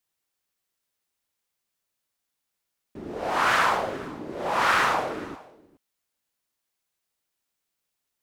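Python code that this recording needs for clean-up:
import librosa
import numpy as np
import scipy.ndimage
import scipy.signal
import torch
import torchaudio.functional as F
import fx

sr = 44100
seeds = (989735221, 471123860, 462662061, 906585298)

y = fx.fix_declip(x, sr, threshold_db=-11.5)
y = fx.fix_echo_inverse(y, sr, delay_ms=418, level_db=-20.5)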